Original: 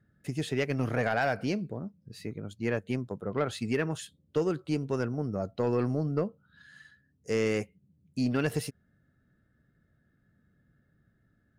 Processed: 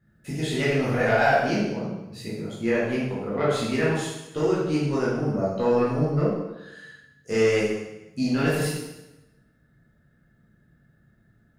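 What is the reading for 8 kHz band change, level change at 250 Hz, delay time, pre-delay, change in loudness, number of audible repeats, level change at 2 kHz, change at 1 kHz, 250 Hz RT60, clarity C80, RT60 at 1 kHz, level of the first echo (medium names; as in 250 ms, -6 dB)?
+7.5 dB, +6.0 dB, no echo, 6 ms, +6.5 dB, no echo, +8.0 dB, +8.5 dB, 1.0 s, 3.0 dB, 0.95 s, no echo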